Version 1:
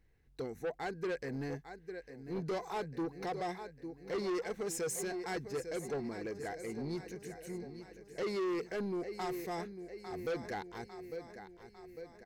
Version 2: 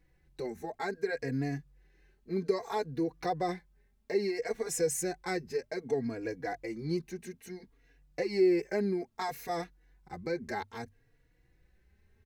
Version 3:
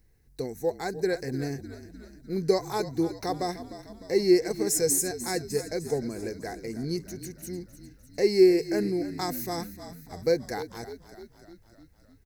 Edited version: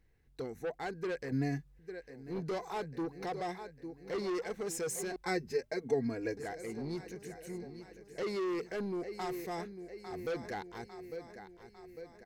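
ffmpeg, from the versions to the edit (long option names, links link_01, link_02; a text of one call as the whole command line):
ffmpeg -i take0.wav -i take1.wav -filter_complex "[1:a]asplit=2[link_01][link_02];[0:a]asplit=3[link_03][link_04][link_05];[link_03]atrim=end=1.322[link_06];[link_01]atrim=start=1.318:end=1.792[link_07];[link_04]atrim=start=1.788:end=5.162[link_08];[link_02]atrim=start=5.158:end=6.372[link_09];[link_05]atrim=start=6.368[link_10];[link_06][link_07]acrossfade=duration=0.004:curve1=hsin:curve2=hsin[link_11];[link_11][link_08]acrossfade=duration=0.004:curve1=hsin:curve2=hsin[link_12];[link_12][link_09]acrossfade=duration=0.004:curve1=hsin:curve2=hsin[link_13];[link_13][link_10]acrossfade=duration=0.004:curve1=hsin:curve2=hsin" out.wav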